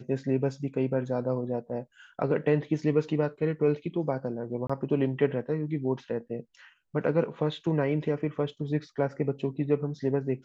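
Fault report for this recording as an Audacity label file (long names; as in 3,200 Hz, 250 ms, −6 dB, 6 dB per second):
4.670000	4.700000	drop-out 25 ms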